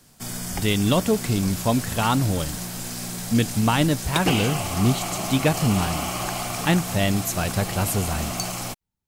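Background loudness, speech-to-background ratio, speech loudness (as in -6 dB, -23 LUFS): -28.5 LUFS, 5.0 dB, -23.5 LUFS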